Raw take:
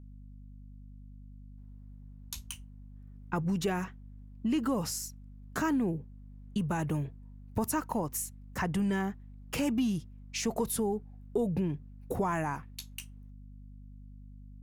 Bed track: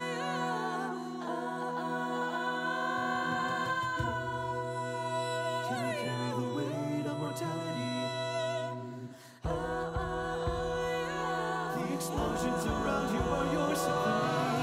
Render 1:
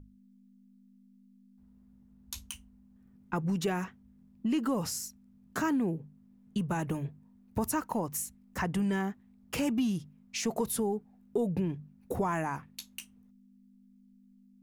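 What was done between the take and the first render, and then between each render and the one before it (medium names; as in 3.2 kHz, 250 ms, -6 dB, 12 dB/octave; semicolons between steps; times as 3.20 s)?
hum notches 50/100/150 Hz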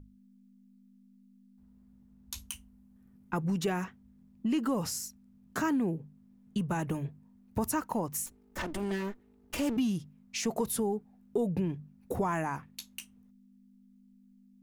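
2.39–3.48 s: peaking EQ 12 kHz +6 dB 0.56 oct; 8.26–9.77 s: comb filter that takes the minimum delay 3.3 ms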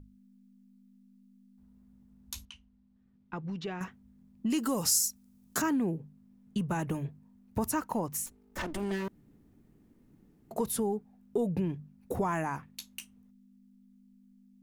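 2.45–3.81 s: four-pole ladder low-pass 5.1 kHz, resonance 30%; 4.50–5.62 s: tone controls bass -2 dB, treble +12 dB; 9.08–10.51 s: room tone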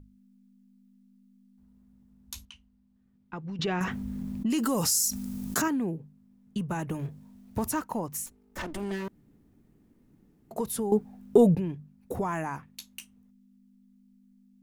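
3.59–5.68 s: level flattener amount 70%; 6.99–7.82 s: companding laws mixed up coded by mu; 10.92–11.55 s: gain +11.5 dB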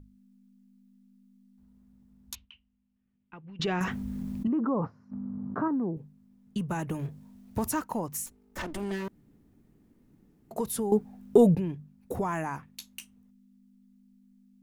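2.35–3.60 s: four-pole ladder low-pass 3.3 kHz, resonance 50%; 4.47–5.97 s: elliptic band-pass 100–1200 Hz, stop band 70 dB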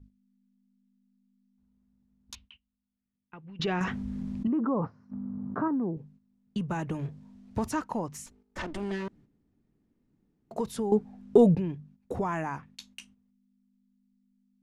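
gate -55 dBFS, range -10 dB; low-pass 6 kHz 12 dB/octave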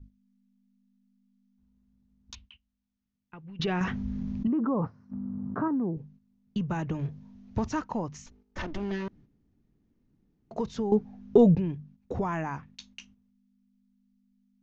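elliptic low-pass 6.5 kHz, stop band 40 dB; bass shelf 140 Hz +7.5 dB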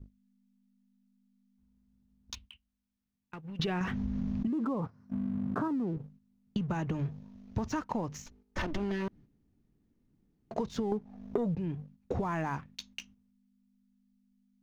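waveshaping leveller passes 1; compression 12:1, threshold -29 dBFS, peak gain reduction 16.5 dB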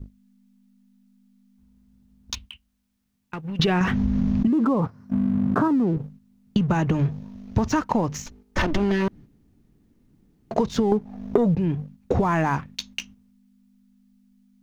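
trim +11.5 dB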